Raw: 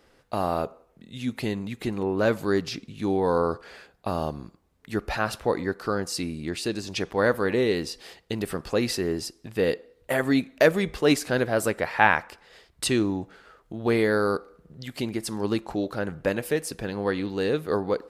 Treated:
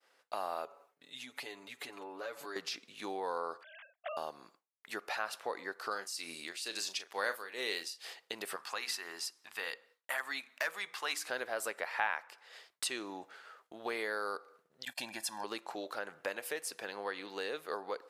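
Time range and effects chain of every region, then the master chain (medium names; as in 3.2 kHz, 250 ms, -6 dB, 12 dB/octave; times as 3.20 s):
0.65–2.56 s: comb 7 ms, depth 79% + compression 2.5:1, threshold -37 dBFS
3.63–4.17 s: formants replaced by sine waves + peaking EQ 1.1 kHz -8.5 dB 2.2 oct
5.91–8.05 s: tremolo 2.2 Hz, depth 83% + treble shelf 2.1 kHz +10.5 dB + doubling 36 ms -11.5 dB
8.56–11.26 s: resonant low shelf 710 Hz -9 dB, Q 1.5 + hum notches 60/120/180/240/300/360/420/480/540 Hz + hard clipper -14.5 dBFS
14.85–15.44 s: gate -43 dBFS, range -23 dB + comb 1.2 ms, depth 96%
whole clip: high-pass 700 Hz 12 dB/octave; compression 2:1, threshold -38 dBFS; expander -59 dBFS; trim -1 dB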